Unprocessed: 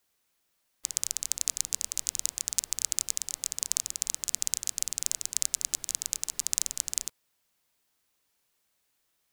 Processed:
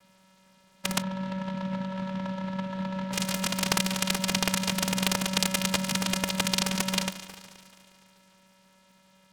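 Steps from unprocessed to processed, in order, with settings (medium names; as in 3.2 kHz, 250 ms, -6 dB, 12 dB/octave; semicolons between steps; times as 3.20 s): on a send: multi-head delay 72 ms, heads second and third, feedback 57%, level -18.5 dB; on the sum: vocoder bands 4, square 189 Hz; 1.02–3.12 s: elliptic low-pass 1.7 kHz; delay time shaken by noise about 1.8 kHz, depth 0.053 ms; trim +6.5 dB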